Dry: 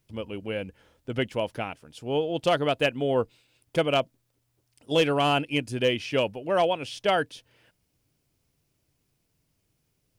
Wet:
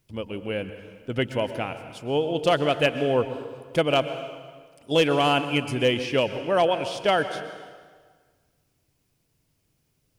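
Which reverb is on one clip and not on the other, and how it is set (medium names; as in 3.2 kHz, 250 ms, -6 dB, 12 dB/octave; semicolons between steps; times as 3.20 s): plate-style reverb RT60 1.6 s, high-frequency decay 0.85×, pre-delay 105 ms, DRR 10 dB; trim +2 dB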